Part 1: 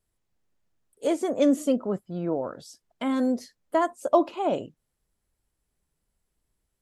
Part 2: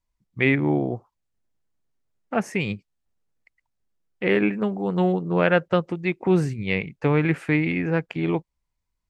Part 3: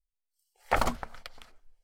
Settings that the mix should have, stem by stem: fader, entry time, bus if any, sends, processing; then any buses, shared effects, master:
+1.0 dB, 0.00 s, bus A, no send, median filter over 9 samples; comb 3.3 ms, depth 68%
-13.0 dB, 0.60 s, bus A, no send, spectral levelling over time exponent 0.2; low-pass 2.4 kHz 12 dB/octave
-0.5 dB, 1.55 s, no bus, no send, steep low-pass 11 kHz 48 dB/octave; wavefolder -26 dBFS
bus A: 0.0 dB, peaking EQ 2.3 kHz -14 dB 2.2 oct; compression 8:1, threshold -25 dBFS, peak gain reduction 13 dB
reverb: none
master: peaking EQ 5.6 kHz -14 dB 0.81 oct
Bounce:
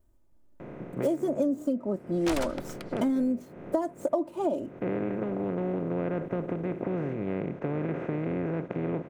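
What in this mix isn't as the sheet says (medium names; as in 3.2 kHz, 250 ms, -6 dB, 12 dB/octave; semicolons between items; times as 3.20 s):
stem 1 +1.0 dB -> +11.5 dB; master: missing peaking EQ 5.6 kHz -14 dB 0.81 oct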